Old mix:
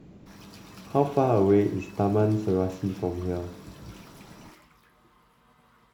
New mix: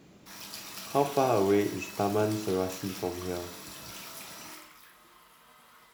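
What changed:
background: send on; master: add tilt +3 dB/oct

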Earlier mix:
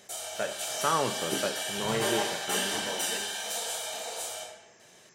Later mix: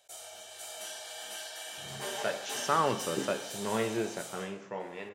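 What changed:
speech: entry +1.85 s; background -8.5 dB

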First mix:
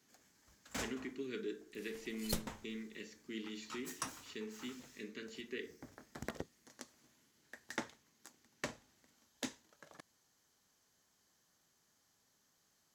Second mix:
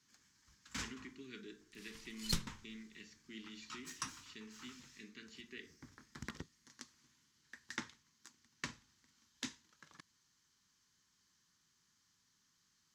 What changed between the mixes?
speech -4.0 dB; second sound +3.5 dB; master: add EQ curve 180 Hz 0 dB, 350 Hz -6 dB, 670 Hz -19 dB, 990 Hz -2 dB, 5400 Hz +2 dB, 15000 Hz -12 dB

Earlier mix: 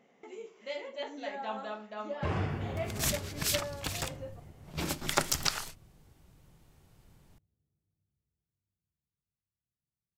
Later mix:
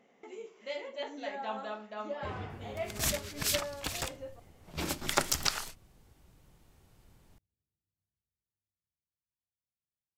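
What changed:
first sound -9.0 dB; master: add bell 150 Hz -4.5 dB 0.53 oct

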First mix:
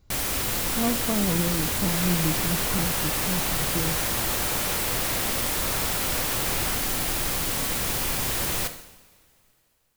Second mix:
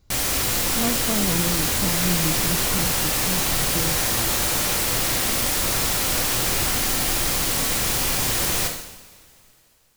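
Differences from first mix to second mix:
first sound: send +8.0 dB; master: add bell 5900 Hz +3.5 dB 1.5 oct

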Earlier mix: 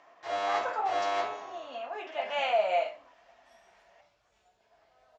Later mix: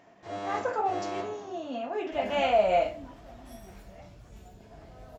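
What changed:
first sound -8.5 dB; second sound +9.0 dB; master: remove three-band isolator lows -23 dB, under 570 Hz, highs -24 dB, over 7300 Hz

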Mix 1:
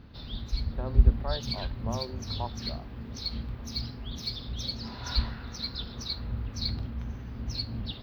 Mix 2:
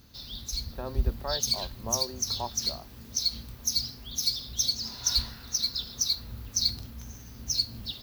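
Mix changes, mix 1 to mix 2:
background -7.5 dB; master: remove air absorption 420 m

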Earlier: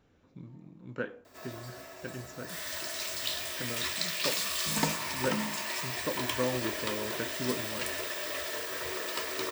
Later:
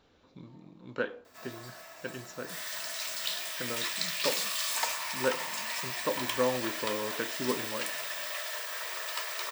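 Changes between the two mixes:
speech: add graphic EQ 125/500/1000/4000 Hz -5/+3/+5/+11 dB; background: add HPF 650 Hz 24 dB/oct

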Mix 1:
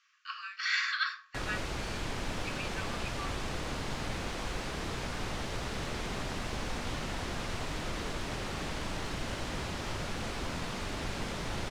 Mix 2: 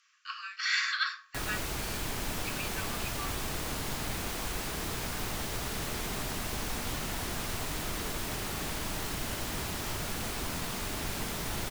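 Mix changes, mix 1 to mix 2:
background: add notch 530 Hz, Q 13; master: remove air absorption 82 m

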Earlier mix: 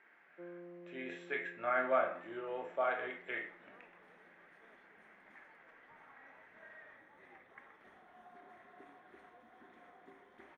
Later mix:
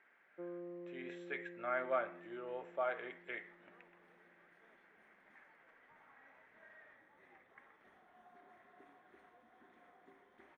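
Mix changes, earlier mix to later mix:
first sound +4.5 dB; second sound -5.0 dB; reverb: off

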